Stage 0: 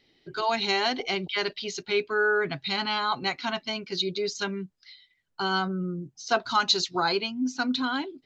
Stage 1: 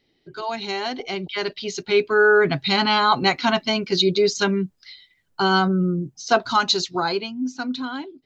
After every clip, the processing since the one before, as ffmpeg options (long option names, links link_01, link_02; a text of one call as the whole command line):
ffmpeg -i in.wav -af "equalizer=frequency=3000:width=0.32:gain=-4.5,dynaudnorm=framelen=220:gausssize=17:maxgain=13dB" out.wav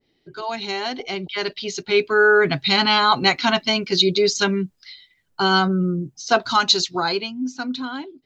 ffmpeg -i in.wav -af "adynamicequalizer=threshold=0.0398:dfrequency=1600:dqfactor=0.7:tfrequency=1600:tqfactor=0.7:attack=5:release=100:ratio=0.375:range=2:mode=boostabove:tftype=highshelf" out.wav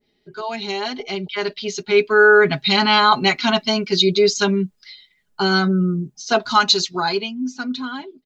ffmpeg -i in.wav -af "aecho=1:1:4.8:0.63,volume=-1dB" out.wav